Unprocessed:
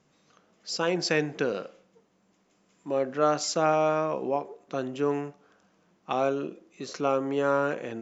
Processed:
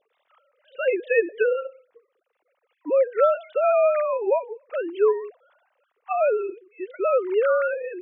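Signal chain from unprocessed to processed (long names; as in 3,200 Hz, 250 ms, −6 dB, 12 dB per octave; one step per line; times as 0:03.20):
three sine waves on the formant tracks
level +5 dB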